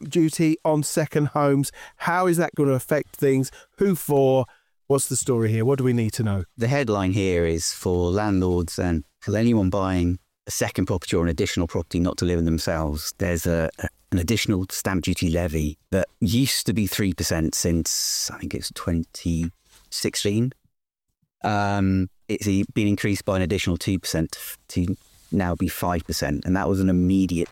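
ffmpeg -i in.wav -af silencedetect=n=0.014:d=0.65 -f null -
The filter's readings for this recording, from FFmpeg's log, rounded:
silence_start: 20.52
silence_end: 21.44 | silence_duration: 0.92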